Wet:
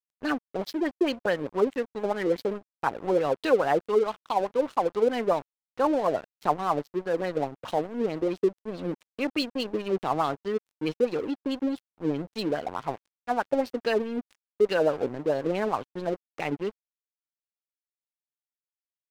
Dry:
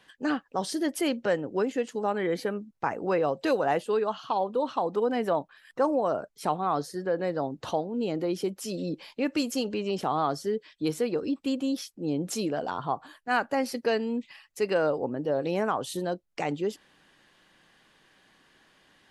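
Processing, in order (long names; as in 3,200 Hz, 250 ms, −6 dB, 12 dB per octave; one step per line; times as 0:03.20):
auto-filter low-pass sine 4.7 Hz 380–4,200 Hz
dead-zone distortion −38 dBFS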